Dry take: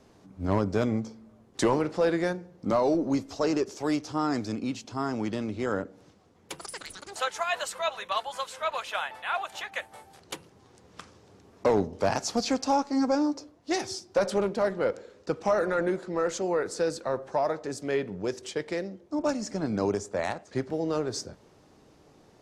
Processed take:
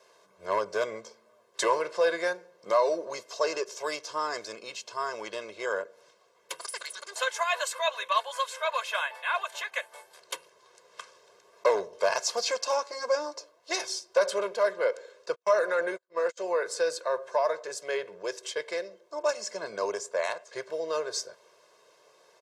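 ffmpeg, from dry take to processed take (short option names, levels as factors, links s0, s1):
-filter_complex "[0:a]asplit=3[s0][s1][s2];[s0]afade=t=out:st=15.34:d=0.02[s3];[s1]agate=range=0.00708:threshold=0.0282:ratio=16:release=100:detection=peak,afade=t=in:st=15.34:d=0.02,afade=t=out:st=16.37:d=0.02[s4];[s2]afade=t=in:st=16.37:d=0.02[s5];[s3][s4][s5]amix=inputs=3:normalize=0,highpass=620,aecho=1:1:1.9:0.97"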